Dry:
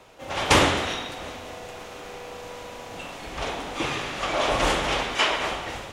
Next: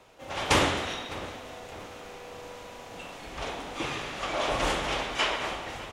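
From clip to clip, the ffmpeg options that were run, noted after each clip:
-filter_complex "[0:a]asplit=2[a][b];[b]adelay=605,lowpass=f=2.2k:p=1,volume=-15.5dB,asplit=2[c][d];[d]adelay=605,lowpass=f=2.2k:p=1,volume=0.47,asplit=2[e][f];[f]adelay=605,lowpass=f=2.2k:p=1,volume=0.47,asplit=2[g][h];[h]adelay=605,lowpass=f=2.2k:p=1,volume=0.47[i];[a][c][e][g][i]amix=inputs=5:normalize=0,volume=-5dB"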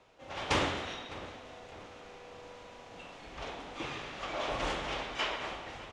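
-af "lowpass=6.2k,volume=-6.5dB"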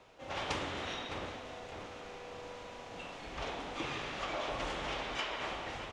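-af "acompressor=threshold=-37dB:ratio=8,volume=3dB"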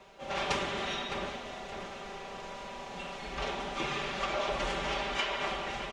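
-af "aecho=1:1:5.1:0.77,volume=3dB"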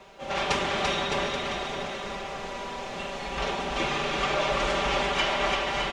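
-af "aecho=1:1:340|612|829.6|1004|1143:0.631|0.398|0.251|0.158|0.1,volume=5dB"

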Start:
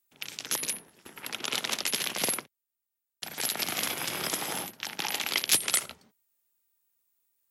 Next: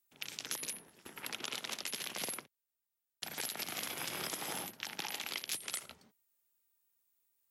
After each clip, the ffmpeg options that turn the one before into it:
-af "acompressor=threshold=-33dB:ratio=6,volume=-3dB"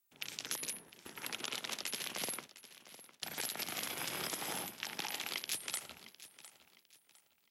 -af "aecho=1:1:706|1412|2118:0.158|0.0523|0.0173"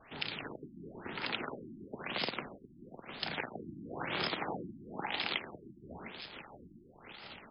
-af "aeval=exprs='val(0)+0.5*0.00631*sgn(val(0))':c=same,afftfilt=real='re*lt(b*sr/1024,340*pow(5300/340,0.5+0.5*sin(2*PI*1*pts/sr)))':imag='im*lt(b*sr/1024,340*pow(5300/340,0.5+0.5*sin(2*PI*1*pts/sr)))':win_size=1024:overlap=0.75,volume=5dB"

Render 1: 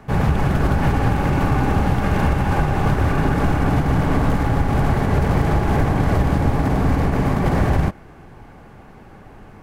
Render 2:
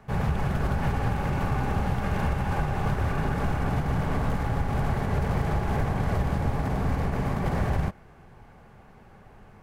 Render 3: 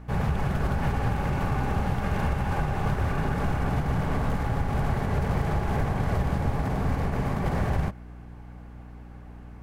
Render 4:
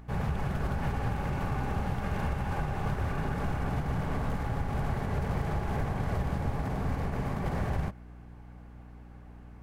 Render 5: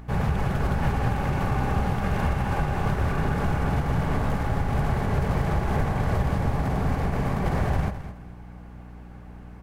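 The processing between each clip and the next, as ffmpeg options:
-af "equalizer=f=300:t=o:w=0.34:g=-8.5,volume=-8dB"
-af "aeval=exprs='val(0)+0.00794*(sin(2*PI*60*n/s)+sin(2*PI*2*60*n/s)/2+sin(2*PI*3*60*n/s)/3+sin(2*PI*4*60*n/s)/4+sin(2*PI*5*60*n/s)/5)':c=same"
-af "acompressor=mode=upward:threshold=-47dB:ratio=2.5,volume=-5dB"
-af "aecho=1:1:211|422|633:0.251|0.0603|0.0145,volume=6.5dB"

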